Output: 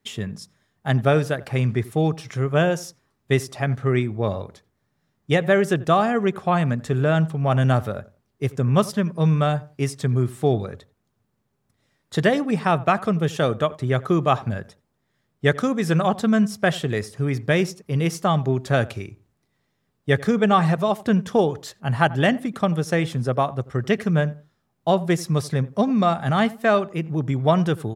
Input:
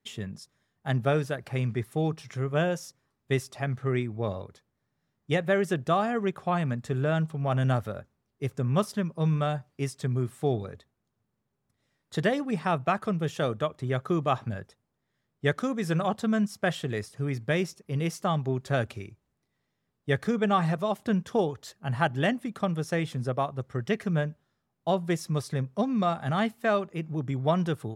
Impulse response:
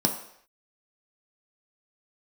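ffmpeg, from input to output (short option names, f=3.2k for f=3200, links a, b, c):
-filter_complex "[0:a]asplit=2[a][b];[b]adelay=87,lowpass=f=1.2k:p=1,volume=-18.5dB,asplit=2[c][d];[d]adelay=87,lowpass=f=1.2k:p=1,volume=0.27[e];[a][c][e]amix=inputs=3:normalize=0,volume=7dB"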